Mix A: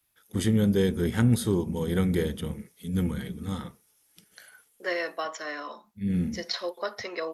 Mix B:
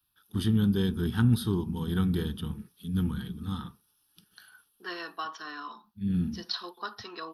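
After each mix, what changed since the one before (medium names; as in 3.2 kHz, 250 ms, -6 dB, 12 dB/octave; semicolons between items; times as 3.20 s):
master: add static phaser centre 2.1 kHz, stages 6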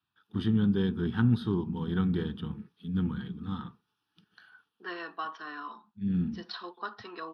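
master: add band-pass 110–2800 Hz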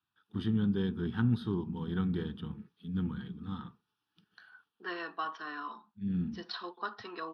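first voice -4.0 dB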